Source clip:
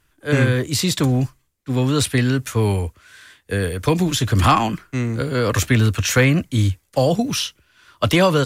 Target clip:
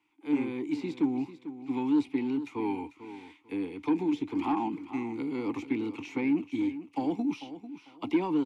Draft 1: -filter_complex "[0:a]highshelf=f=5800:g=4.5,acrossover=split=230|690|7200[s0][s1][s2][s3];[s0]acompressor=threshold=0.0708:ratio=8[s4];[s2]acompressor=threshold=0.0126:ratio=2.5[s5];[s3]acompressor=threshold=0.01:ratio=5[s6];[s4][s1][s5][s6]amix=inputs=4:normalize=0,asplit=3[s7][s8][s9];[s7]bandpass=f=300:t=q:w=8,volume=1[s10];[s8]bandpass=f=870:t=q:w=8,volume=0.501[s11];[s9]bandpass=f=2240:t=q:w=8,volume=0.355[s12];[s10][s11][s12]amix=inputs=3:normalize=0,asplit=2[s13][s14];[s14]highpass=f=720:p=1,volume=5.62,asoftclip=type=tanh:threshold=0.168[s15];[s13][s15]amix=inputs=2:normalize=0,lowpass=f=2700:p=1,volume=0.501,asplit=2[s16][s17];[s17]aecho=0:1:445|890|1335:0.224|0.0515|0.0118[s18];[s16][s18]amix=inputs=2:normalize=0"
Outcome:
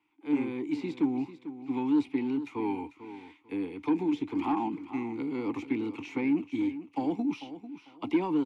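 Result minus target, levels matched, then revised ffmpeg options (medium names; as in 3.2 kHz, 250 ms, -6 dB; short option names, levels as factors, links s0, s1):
8 kHz band -2.5 dB
-filter_complex "[0:a]highshelf=f=5800:g=15.5,acrossover=split=230|690|7200[s0][s1][s2][s3];[s0]acompressor=threshold=0.0708:ratio=8[s4];[s2]acompressor=threshold=0.0126:ratio=2.5[s5];[s3]acompressor=threshold=0.01:ratio=5[s6];[s4][s1][s5][s6]amix=inputs=4:normalize=0,asplit=3[s7][s8][s9];[s7]bandpass=f=300:t=q:w=8,volume=1[s10];[s8]bandpass=f=870:t=q:w=8,volume=0.501[s11];[s9]bandpass=f=2240:t=q:w=8,volume=0.355[s12];[s10][s11][s12]amix=inputs=3:normalize=0,asplit=2[s13][s14];[s14]highpass=f=720:p=1,volume=5.62,asoftclip=type=tanh:threshold=0.168[s15];[s13][s15]amix=inputs=2:normalize=0,lowpass=f=2700:p=1,volume=0.501,asplit=2[s16][s17];[s17]aecho=0:1:445|890|1335:0.224|0.0515|0.0118[s18];[s16][s18]amix=inputs=2:normalize=0"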